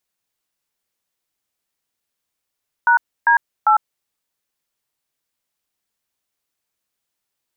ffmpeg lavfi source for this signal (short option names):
-f lavfi -i "aevalsrc='0.237*clip(min(mod(t,0.398),0.102-mod(t,0.398))/0.002,0,1)*(eq(floor(t/0.398),0)*(sin(2*PI*941*mod(t,0.398))+sin(2*PI*1477*mod(t,0.398)))+eq(floor(t/0.398),1)*(sin(2*PI*941*mod(t,0.398))+sin(2*PI*1633*mod(t,0.398)))+eq(floor(t/0.398),2)*(sin(2*PI*852*mod(t,0.398))+sin(2*PI*1336*mod(t,0.398))))':d=1.194:s=44100"